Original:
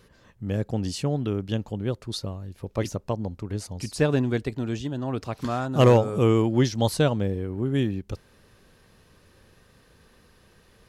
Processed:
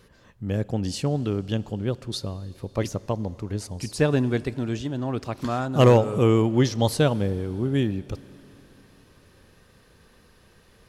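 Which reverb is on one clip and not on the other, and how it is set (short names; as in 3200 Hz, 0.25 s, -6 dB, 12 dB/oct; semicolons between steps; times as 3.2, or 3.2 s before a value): Schroeder reverb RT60 3.7 s, combs from 32 ms, DRR 19 dB; gain +1 dB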